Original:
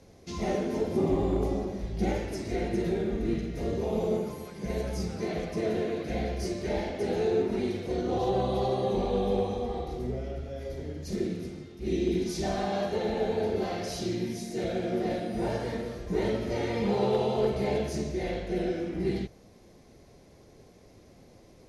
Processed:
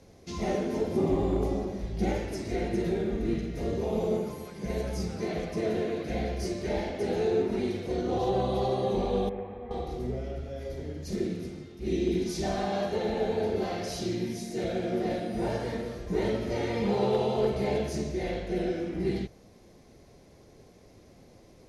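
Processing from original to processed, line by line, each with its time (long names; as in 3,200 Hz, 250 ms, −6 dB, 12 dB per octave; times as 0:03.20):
0:09.29–0:09.71: transistor ladder low-pass 2,300 Hz, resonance 50%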